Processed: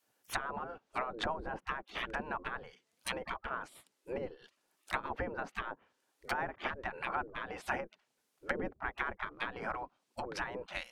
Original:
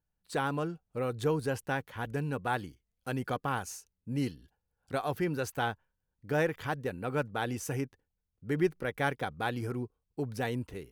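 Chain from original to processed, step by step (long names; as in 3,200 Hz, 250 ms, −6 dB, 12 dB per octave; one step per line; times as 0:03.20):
treble cut that deepens with the level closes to 470 Hz, closed at −28 dBFS
gate on every frequency bin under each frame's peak −20 dB weak
level +16.5 dB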